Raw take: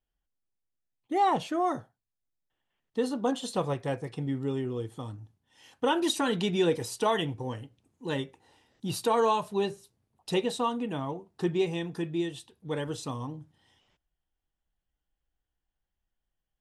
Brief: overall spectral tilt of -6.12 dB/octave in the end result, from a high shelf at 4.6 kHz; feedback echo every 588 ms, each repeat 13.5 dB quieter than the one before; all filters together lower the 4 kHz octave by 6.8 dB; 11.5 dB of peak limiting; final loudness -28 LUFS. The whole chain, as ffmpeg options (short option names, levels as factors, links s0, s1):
-af "equalizer=f=4000:t=o:g=-6.5,highshelf=f=4600:g=-5,alimiter=level_in=1.41:limit=0.0631:level=0:latency=1,volume=0.708,aecho=1:1:588|1176:0.211|0.0444,volume=2.82"